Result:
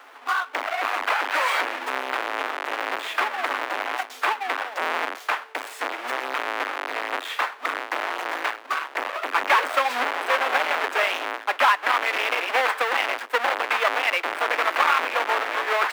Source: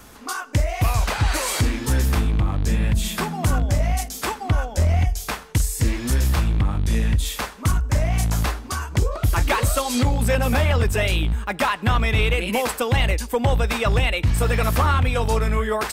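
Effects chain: half-waves squared off; dynamic EQ 1800 Hz, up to +4 dB, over -32 dBFS, Q 0.88; Chebyshev high-pass 260 Hz, order 6; three-band isolator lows -22 dB, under 570 Hz, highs -16 dB, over 3300 Hz

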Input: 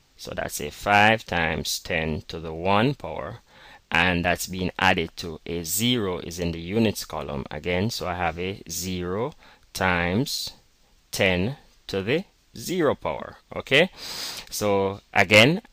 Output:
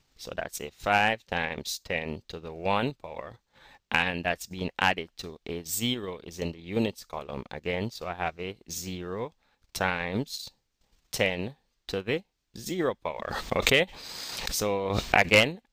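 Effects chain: transient shaper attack +5 dB, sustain -11 dB; 13.09–15.32 backwards sustainer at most 32 dB/s; gain -7.5 dB

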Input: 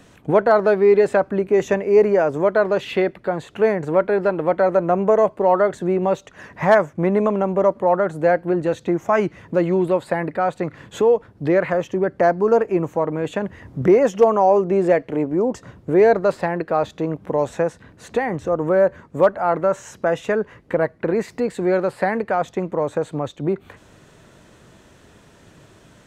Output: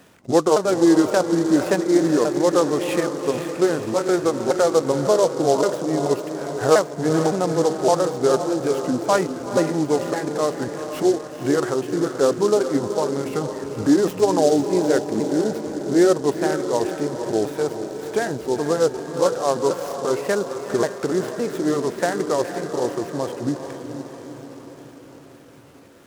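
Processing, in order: repeated pitch sweeps -6 st, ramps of 0.563 s; HPF 200 Hz 6 dB/oct; diffused feedback echo 0.464 s, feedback 59%, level -8 dB; noise-modulated delay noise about 5400 Hz, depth 0.036 ms

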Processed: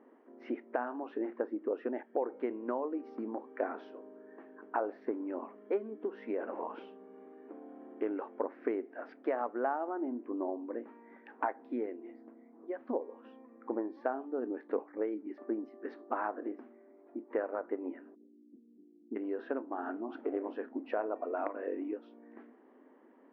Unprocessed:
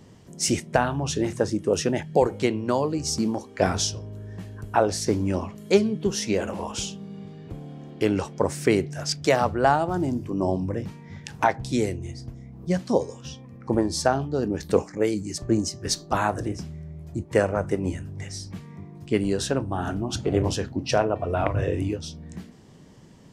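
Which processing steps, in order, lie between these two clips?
inverse Chebyshev low-pass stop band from 7100 Hz, stop band 70 dB, from 18.14 s stop band from 1300 Hz, from 19.15 s stop band from 7400 Hz; compressor 2.5:1, threshold -27 dBFS, peak gain reduction 10 dB; brick-wall FIR high-pass 230 Hz; gain -5 dB

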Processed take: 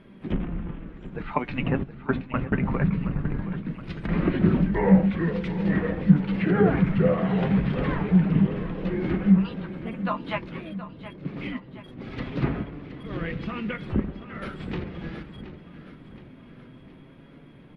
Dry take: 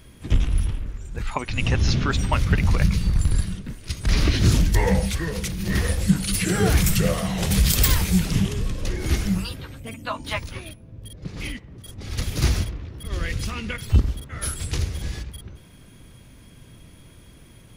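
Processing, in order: treble ducked by the level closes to 1900 Hz, closed at -17.5 dBFS; 1.83–2.53 gate with hold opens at -10 dBFS; resonant low shelf 130 Hz -13 dB, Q 1.5; flange 0.21 Hz, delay 5 ms, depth 3 ms, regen +59%; air absorption 500 m; feedback echo 0.722 s, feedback 54%, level -13.5 dB; gain +6.5 dB

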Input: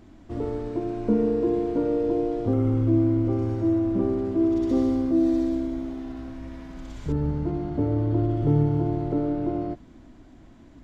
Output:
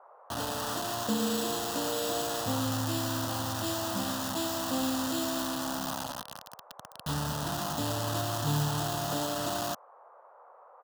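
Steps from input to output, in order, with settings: low shelf 370 Hz -7.5 dB; notches 60/120/180/240/300 Hz; in parallel at -1 dB: compressor 12:1, threshold -31 dBFS, peak gain reduction 10.5 dB; on the sum: careless resampling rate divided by 6×, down none, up hold; on a send: feedback echo 0.114 s, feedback 43%, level -10.5 dB; on the sum: bit-crush 5-bit; HPF 120 Hz 12 dB/oct; bell 3000 Hz +6.5 dB 1 oct; fixed phaser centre 930 Hz, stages 4; band noise 490–1200 Hz -55 dBFS

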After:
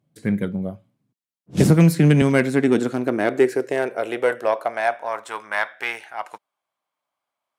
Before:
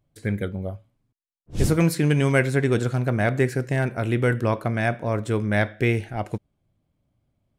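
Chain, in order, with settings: added harmonics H 4 -22 dB, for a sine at -6.5 dBFS; high-pass sweep 170 Hz -> 1000 Hz, 1.99–5.43; 1.57–2.22 three-band squash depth 100%

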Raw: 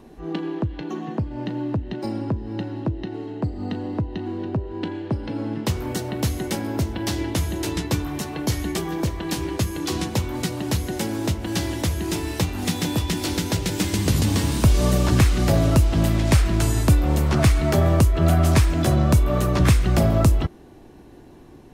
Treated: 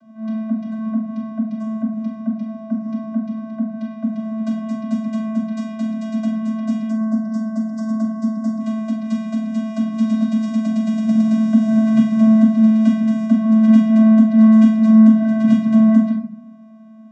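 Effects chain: varispeed +27%; spectral gain 6.89–8.6, 1700–4700 Hz -20 dB; vocoder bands 16, square 220 Hz; reverb RT60 0.60 s, pre-delay 3 ms, DRR 0 dB

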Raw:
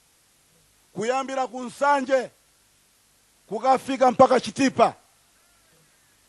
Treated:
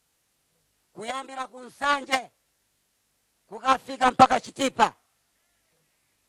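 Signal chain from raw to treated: formant shift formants +4 st; added harmonics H 7 -20 dB, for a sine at -2 dBFS

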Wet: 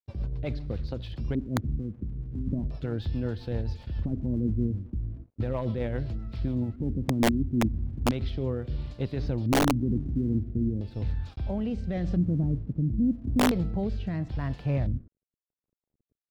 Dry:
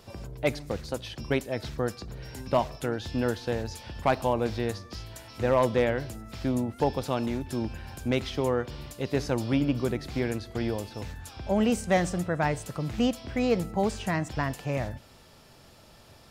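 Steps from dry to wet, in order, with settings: RIAA curve playback; gate -35 dBFS, range -19 dB; limiter -16 dBFS, peak gain reduction 9 dB; 1.77–2.33 compressor, threshold -26 dBFS, peak gain reduction 6 dB; LFO low-pass square 0.37 Hz 270–4200 Hz; crossover distortion -55 dBFS; rotary speaker horn 7.5 Hz, later 0.9 Hz, at 6.41; wrapped overs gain 12.5 dB; gain -4 dB

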